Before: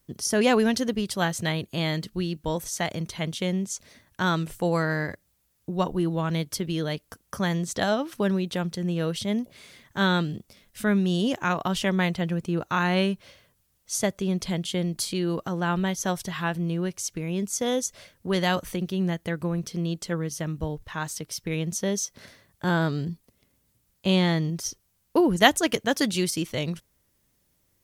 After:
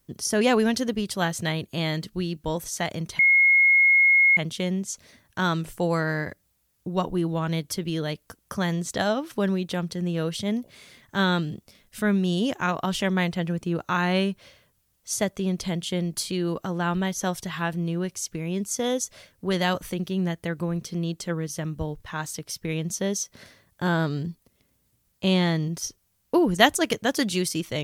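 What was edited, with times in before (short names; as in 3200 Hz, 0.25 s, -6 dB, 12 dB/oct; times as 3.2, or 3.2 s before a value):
3.19 add tone 2160 Hz -14 dBFS 1.18 s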